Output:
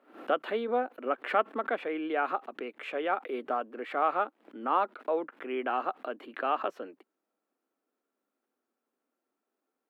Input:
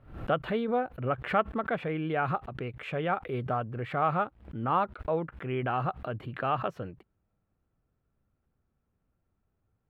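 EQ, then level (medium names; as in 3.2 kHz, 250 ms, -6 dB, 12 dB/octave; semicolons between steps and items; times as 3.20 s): steep high-pass 250 Hz 48 dB/octave; 0.0 dB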